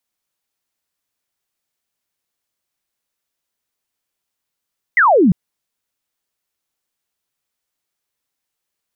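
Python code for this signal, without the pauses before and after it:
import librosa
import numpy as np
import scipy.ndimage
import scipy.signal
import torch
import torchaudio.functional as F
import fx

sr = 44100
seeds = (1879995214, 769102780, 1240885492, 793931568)

y = fx.laser_zap(sr, level_db=-8.0, start_hz=2100.0, end_hz=160.0, length_s=0.35, wave='sine')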